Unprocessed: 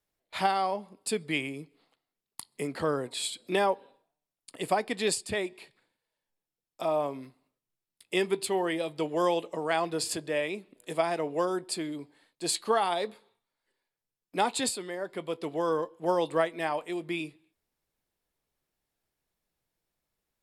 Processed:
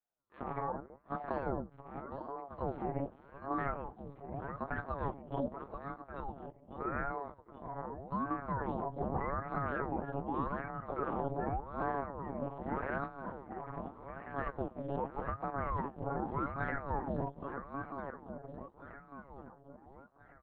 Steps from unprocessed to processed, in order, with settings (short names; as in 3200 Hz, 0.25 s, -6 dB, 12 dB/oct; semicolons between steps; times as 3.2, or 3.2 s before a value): inharmonic rescaling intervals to 126%; Chebyshev low-pass 840 Hz, order 2; bell 230 Hz -7 dB 0.26 oct; harmonic-percussive split percussive -4 dB; comb 7.1 ms, depth 49%; compressor, threshold -32 dBFS, peak gain reduction 11 dB; limiter -31 dBFS, peak gain reduction 7 dB; AGC gain up to 7 dB; swung echo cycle 1.386 s, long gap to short 1.5:1, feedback 36%, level -6.5 dB; monotone LPC vocoder at 8 kHz 140 Hz; ring modulator with a swept carrier 430 Hz, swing 70%, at 0.84 Hz; gain -2 dB